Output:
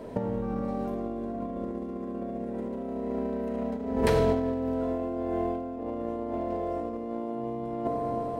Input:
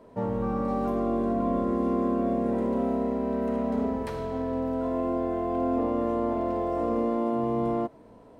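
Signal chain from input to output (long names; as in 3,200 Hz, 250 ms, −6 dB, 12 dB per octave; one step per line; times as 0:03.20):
parametric band 1,100 Hz −6.5 dB 0.57 octaves
bucket-brigade delay 359 ms, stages 4,096, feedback 71%, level −18 dB
compressor whose output falls as the input rises −33 dBFS, ratio −0.5
level +4.5 dB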